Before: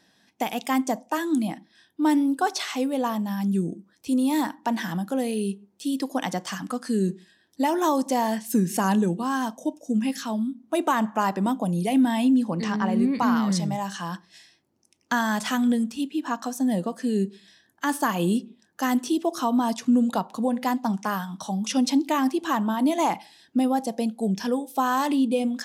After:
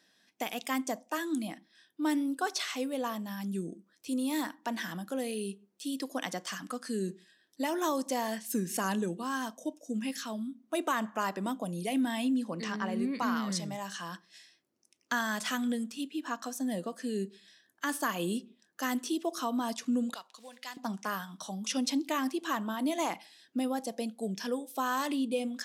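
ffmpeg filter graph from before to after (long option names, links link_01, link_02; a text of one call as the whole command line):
ffmpeg -i in.wav -filter_complex "[0:a]asettb=1/sr,asplit=3[link_01][link_02][link_03];[link_01]atrim=end=20.144[link_04];[link_02]atrim=start=20.14:end=20.77,asetpts=PTS-STARTPTS,afade=type=in:duration=0.004:curve=qsin,afade=type=out:start_time=0.626:duration=0.004:curve=qsin,acrusher=bits=8:mode=log:mix=0:aa=0.000001,bandpass=frequency=4100:width_type=q:width=0.79[link_05];[link_03]atrim=start=20.766[link_06];[link_04][link_05]acrossfade=duration=0.004:curve1=hsin:curve2=qsin[link_07];[link_07][link_06]acrossfade=duration=0.004:curve1=qsin:curve2=hsin,highpass=frequency=420:poles=1,equalizer=frequency=850:width_type=o:width=0.43:gain=-8,volume=-4dB" out.wav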